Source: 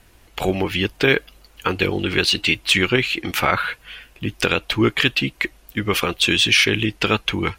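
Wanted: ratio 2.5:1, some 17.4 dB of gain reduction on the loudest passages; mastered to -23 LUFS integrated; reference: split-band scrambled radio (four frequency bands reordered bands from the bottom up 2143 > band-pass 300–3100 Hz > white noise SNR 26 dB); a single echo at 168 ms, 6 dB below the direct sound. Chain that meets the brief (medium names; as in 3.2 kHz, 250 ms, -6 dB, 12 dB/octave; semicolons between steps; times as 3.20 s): compression 2.5:1, threshold -40 dBFS; delay 168 ms -6 dB; four frequency bands reordered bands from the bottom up 2143; band-pass 300–3100 Hz; white noise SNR 26 dB; trim +12.5 dB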